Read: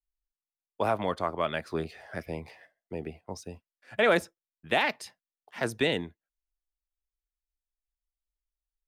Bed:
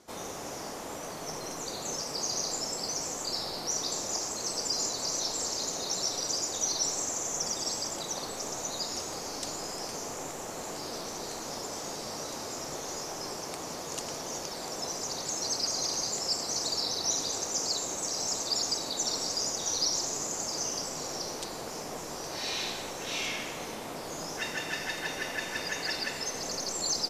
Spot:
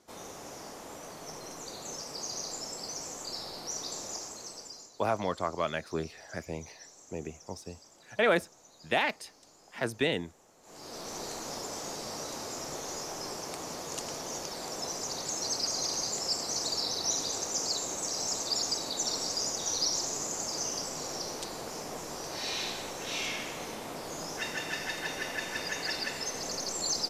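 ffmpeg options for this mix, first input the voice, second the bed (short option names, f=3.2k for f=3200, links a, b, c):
-filter_complex "[0:a]adelay=4200,volume=-2dB[a];[1:a]volume=16dB,afade=t=out:st=4.06:d=0.83:silence=0.141254,afade=t=in:st=10.62:d=0.55:silence=0.0841395[b];[a][b]amix=inputs=2:normalize=0"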